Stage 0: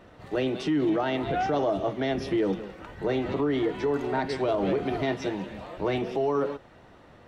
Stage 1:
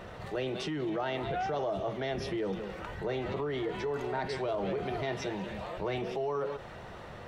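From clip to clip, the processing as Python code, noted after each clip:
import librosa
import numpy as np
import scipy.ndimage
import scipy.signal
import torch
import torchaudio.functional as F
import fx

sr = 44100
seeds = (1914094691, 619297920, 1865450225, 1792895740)

y = fx.peak_eq(x, sr, hz=280.0, db=-11.5, octaves=0.36)
y = fx.env_flatten(y, sr, amount_pct=50)
y = F.gain(torch.from_numpy(y), -7.0).numpy()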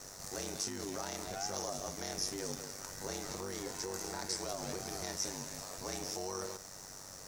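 y = fx.envelope_flatten(x, sr, power=0.6)
y = y * np.sin(2.0 * np.pi * 48.0 * np.arange(len(y)) / sr)
y = fx.high_shelf_res(y, sr, hz=4300.0, db=11.5, q=3.0)
y = F.gain(torch.from_numpy(y), -5.5).numpy()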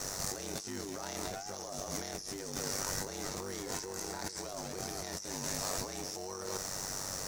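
y = fx.over_compress(x, sr, threshold_db=-46.0, ratio=-1.0)
y = F.gain(torch.from_numpy(y), 6.0).numpy()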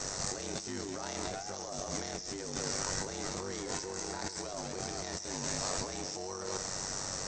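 y = fx.brickwall_lowpass(x, sr, high_hz=8400.0)
y = y + 10.0 ** (-15.0 / 20.0) * np.pad(y, (int(132 * sr / 1000.0), 0))[:len(y)]
y = F.gain(torch.from_numpy(y), 1.5).numpy()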